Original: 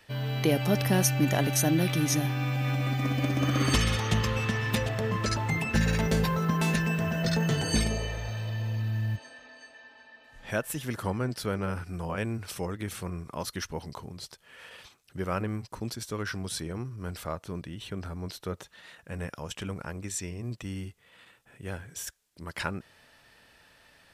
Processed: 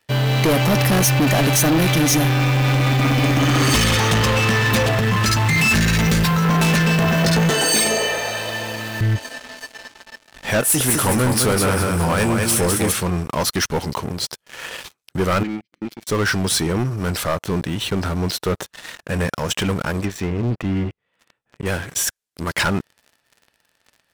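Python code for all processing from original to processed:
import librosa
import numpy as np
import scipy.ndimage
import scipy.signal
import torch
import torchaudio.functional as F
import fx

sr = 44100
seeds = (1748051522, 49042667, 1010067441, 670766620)

y = fx.chain(x, sr, fx.peak_eq(hz=540.0, db=-13.5, octaves=1.4),
    fx.pre_swell(db_per_s=24.0), at=(4.99, 6.45))
y = fx.chain(y, sr, fx.highpass(hz=350.0, slope=12),
    fx.peak_eq(hz=8700.0, db=6.5, octaves=0.33), at=(7.5, 9.01))
y = fx.chain(y, sr, fx.peak_eq(hz=9800.0, db=12.5, octaves=0.93),
    fx.doubler(ms=23.0, db=-10.5),
    fx.echo_feedback(ms=203, feedback_pct=35, wet_db=-6.0), at=(10.6, 12.92))
y = fx.chain(y, sr, fx.vowel_filter(vowel='i'),
    fx.comb(ms=5.8, depth=0.8), at=(15.43, 16.07))
y = fx.chain(y, sr, fx.high_shelf(hz=3100.0, db=-11.0),
    fx.env_lowpass_down(base_hz=2200.0, full_db=-33.5), at=(20.05, 21.66))
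y = fx.low_shelf(y, sr, hz=82.0, db=-9.0)
y = fx.leveller(y, sr, passes=5)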